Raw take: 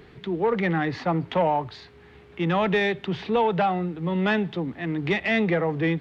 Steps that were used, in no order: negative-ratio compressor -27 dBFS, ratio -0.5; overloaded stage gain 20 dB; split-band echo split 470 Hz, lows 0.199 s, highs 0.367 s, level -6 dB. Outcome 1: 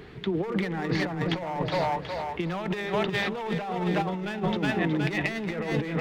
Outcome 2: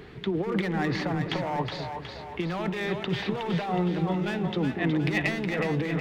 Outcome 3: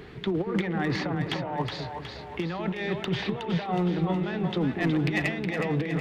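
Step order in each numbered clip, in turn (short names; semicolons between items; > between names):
overloaded stage > split-band echo > negative-ratio compressor; overloaded stage > negative-ratio compressor > split-band echo; negative-ratio compressor > overloaded stage > split-band echo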